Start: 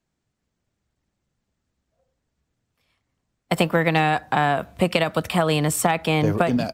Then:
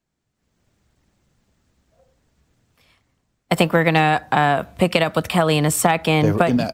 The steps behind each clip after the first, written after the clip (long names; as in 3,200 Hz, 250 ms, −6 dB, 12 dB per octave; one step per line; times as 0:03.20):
automatic gain control gain up to 13 dB
level −1 dB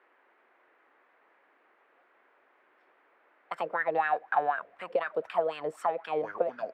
low-shelf EQ 220 Hz −10.5 dB
LFO wah 4 Hz 430–1,600 Hz, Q 6.7
noise in a band 310–2,000 Hz −66 dBFS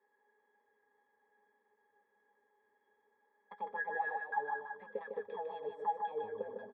resonances in every octave G#, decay 0.11 s
on a send: multi-tap delay 123/153/331 ms −14/−5/−12.5 dB
on the sum: level +1.5 dB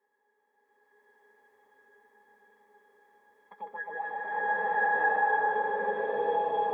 slow-attack reverb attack 1,070 ms, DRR −11.5 dB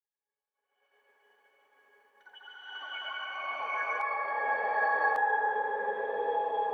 downward expander −60 dBFS
delay with pitch and tempo change per echo 117 ms, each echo +5 semitones, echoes 2, each echo −6 dB
parametric band 170 Hz −13 dB 1.1 octaves
level −1.5 dB